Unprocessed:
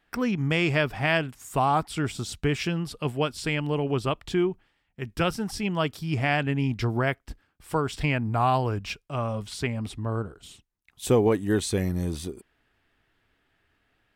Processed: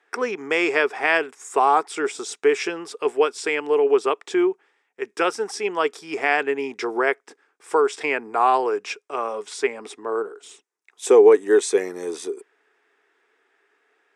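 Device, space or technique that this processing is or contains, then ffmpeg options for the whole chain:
phone speaker on a table: -af "highpass=f=390:w=0.5412,highpass=f=390:w=1.3066,equalizer=f=420:t=q:w=4:g=9,equalizer=f=600:t=q:w=4:g=-8,equalizer=f=3k:t=q:w=4:g=-8,equalizer=f=4.3k:t=q:w=4:g=-9,lowpass=f=8.8k:w=0.5412,lowpass=f=8.8k:w=1.3066,volume=7dB"

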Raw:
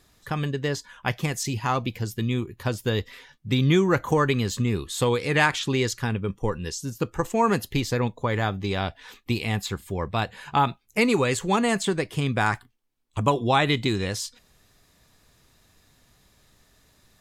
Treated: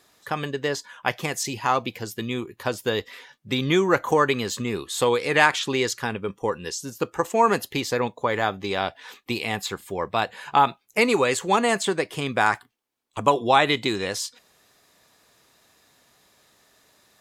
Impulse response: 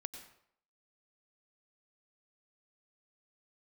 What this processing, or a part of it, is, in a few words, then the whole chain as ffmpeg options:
filter by subtraction: -filter_complex "[0:a]asplit=2[a][b];[b]lowpass=600,volume=-1[c];[a][c]amix=inputs=2:normalize=0,volume=2dB"

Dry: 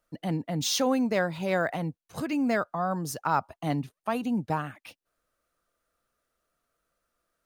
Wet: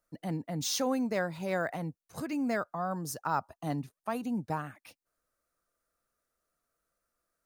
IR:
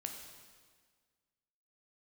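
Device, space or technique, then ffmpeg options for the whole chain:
exciter from parts: -filter_complex "[0:a]asplit=2[a][b];[b]highpass=f=2.9k:w=0.5412,highpass=f=2.9k:w=1.3066,asoftclip=type=tanh:threshold=-25.5dB,volume=-5dB[c];[a][c]amix=inputs=2:normalize=0,asettb=1/sr,asplit=3[d][e][f];[d]atrim=end=2.954[g];[e]atrim=start=2.95:end=3.82,asetpts=PTS-STARTPTS,afade=t=in:d=0.004:c=qsin,afade=t=out:st=0.866:d=0.004:c=qsin,bandreject=f=2.2k:w=7.8[h];[f]atrim=start=3.816[i];[g][h]acrossfade=d=0.004:c1=hsin:c2=qsin[j];[j][i]acrossfade=d=0.004:c1=qsin:c2=hsin,volume=-5dB"

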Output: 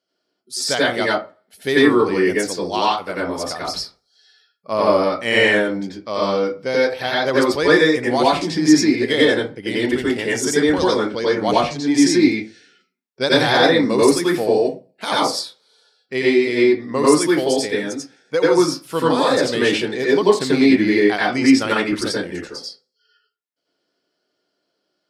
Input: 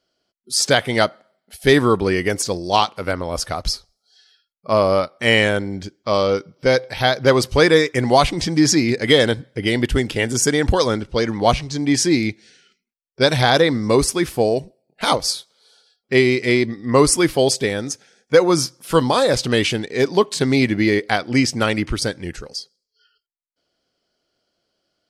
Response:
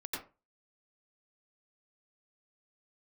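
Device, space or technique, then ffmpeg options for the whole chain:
far laptop microphone: -filter_complex "[1:a]atrim=start_sample=2205[a];[0:a][a]afir=irnorm=-1:irlink=0,highpass=160,dynaudnorm=f=190:g=21:m=11.5dB,volume=-1dB"

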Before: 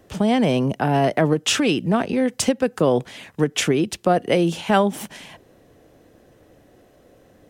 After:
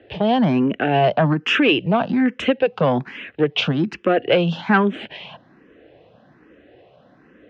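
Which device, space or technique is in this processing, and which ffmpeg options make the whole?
barber-pole phaser into a guitar amplifier: -filter_complex "[0:a]asplit=2[a][b];[b]afreqshift=1.2[c];[a][c]amix=inputs=2:normalize=1,asoftclip=type=tanh:threshold=-13dB,highpass=81,equalizer=f=89:t=q:w=4:g=-8,equalizer=f=1.6k:t=q:w=4:g=4,equalizer=f=2.7k:t=q:w=4:g=5,lowpass=f=3.6k:w=0.5412,lowpass=f=3.6k:w=1.3066,volume=5.5dB"

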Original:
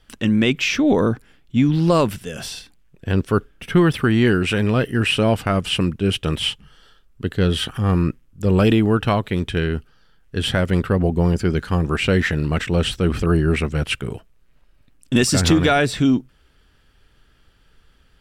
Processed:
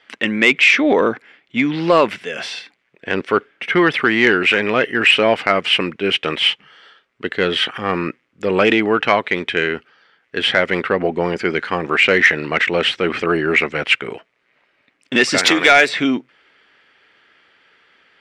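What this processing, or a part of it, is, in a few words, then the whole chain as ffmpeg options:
intercom: -filter_complex "[0:a]asettb=1/sr,asplit=3[a][b][c];[a]atrim=end=15.384[d];[b]atrim=start=15.38:end=15.89,asetpts=PTS-STARTPTS,afade=t=in:d=0.004:c=qsin,afade=t=out:st=0.506:d=0.004:c=qsin,aemphasis=mode=production:type=bsi[e];[c]atrim=start=15.886[f];[d][e]acrossfade=d=0.004:c1=hsin:c2=qsin[g];[g][f]acrossfade=d=0.004:c1=qsin:c2=hsin,highpass=400,lowpass=3.9k,equalizer=f=2.1k:t=o:w=0.49:g=10,asoftclip=type=tanh:threshold=-7.5dB,volume=6.5dB"

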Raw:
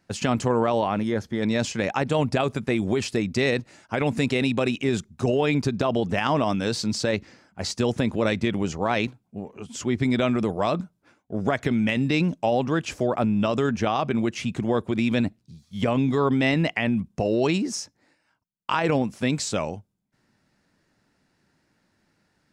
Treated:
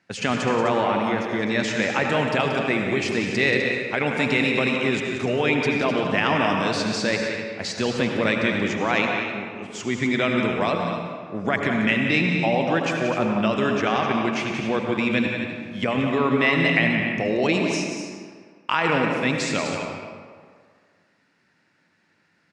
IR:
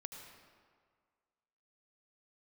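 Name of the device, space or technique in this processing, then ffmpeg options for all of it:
stadium PA: -filter_complex "[0:a]highpass=130,equalizer=f=2.1k:t=o:w=1.3:g=8,aecho=1:1:180.8|253.6:0.355|0.316[a];[1:a]atrim=start_sample=2205[b];[a][b]afir=irnorm=-1:irlink=0,lowpass=8.2k,asettb=1/sr,asplit=3[c][d][e];[c]atrim=end=16.054[f];[d]atrim=start=16.05:end=16.53,asetpts=PTS-STARTPTS,afade=t=in:d=0.004:c=qsin,afade=t=out:st=0.476:d=0.004:c=qsin,highshelf=f=7.7k:g=-7[g];[e]atrim=start=16.526[h];[f][g]acrossfade=d=0.004:c1=hsin:c2=qsin[i];[i][h]acrossfade=d=0.004:c1=qsin:c2=hsin,volume=3.5dB"

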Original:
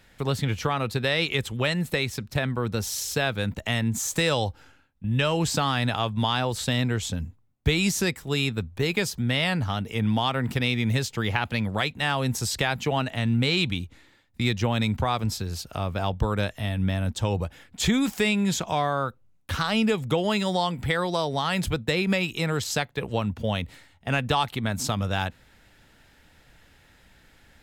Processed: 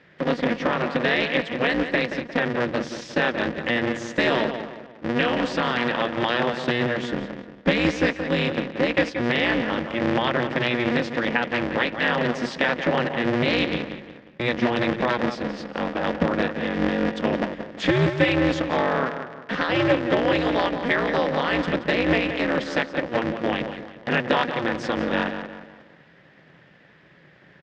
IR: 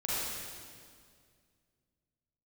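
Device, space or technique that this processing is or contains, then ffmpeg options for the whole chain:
ring modulator pedal into a guitar cabinet: -filter_complex "[0:a]asettb=1/sr,asplit=3[a][b][c];[a]atrim=end=5.244[d];[b]atrim=start=5.24:end=5.9,asetpts=PTS-STARTPTS,afade=t=in:d=0.004:c=qsin,afade=t=out:st=0.656:d=0.004:c=qsin,equalizer=f=340:w=1.1:g=-5.5[e];[c]atrim=start=5.896[f];[d][e]acrossfade=d=0.004:c1=hsin:c2=qsin[g];[g][f]acrossfade=d=0.004:c1=qsin:c2=hsin,asplit=2[h][i];[i]adelay=177,lowpass=f=3.4k:p=1,volume=-8.5dB,asplit=2[j][k];[k]adelay=177,lowpass=f=3.4k:p=1,volume=0.42,asplit=2[l][m];[m]adelay=177,lowpass=f=3.4k:p=1,volume=0.42,asplit=2[n][o];[o]adelay=177,lowpass=f=3.4k:p=1,volume=0.42,asplit=2[p][q];[q]adelay=177,lowpass=f=3.4k:p=1,volume=0.42[r];[h][j][l][n][p][r]amix=inputs=6:normalize=0,aeval=exprs='val(0)*sgn(sin(2*PI*120*n/s))':c=same,highpass=100,equalizer=f=100:t=q:w=4:g=-7,equalizer=f=160:t=q:w=4:g=8,equalizer=f=300:t=q:w=4:g=4,equalizer=f=530:t=q:w=4:g=8,equalizer=f=1.8k:t=q:w=4:g=8,equalizer=f=4.1k:t=q:w=4:g=-5,lowpass=f=4.5k:w=0.5412,lowpass=f=4.5k:w=1.3066"

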